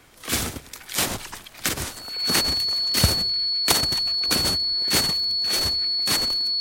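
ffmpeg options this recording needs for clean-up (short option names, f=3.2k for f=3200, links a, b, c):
-af "bandreject=f=4.4k:w=30"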